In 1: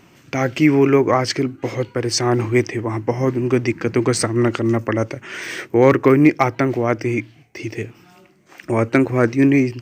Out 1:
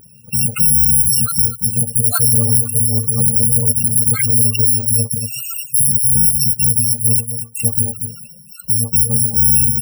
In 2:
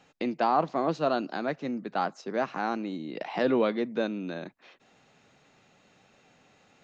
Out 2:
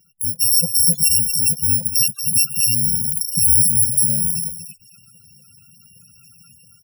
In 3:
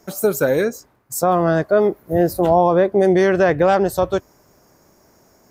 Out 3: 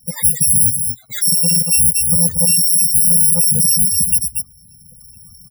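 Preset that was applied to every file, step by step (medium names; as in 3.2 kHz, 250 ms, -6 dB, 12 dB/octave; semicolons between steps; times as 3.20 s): bit-reversed sample order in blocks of 128 samples; in parallel at -7 dB: saturation -10 dBFS; on the sum: level rider gain up to 9 dB; on a send: delay 233 ms -10.5 dB; on the sum: loudest bins only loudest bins 32; dynamic bell 4.9 kHz, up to -6 dB, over -36 dBFS, Q 3; peak limiter -10 dBFS; trim +5 dB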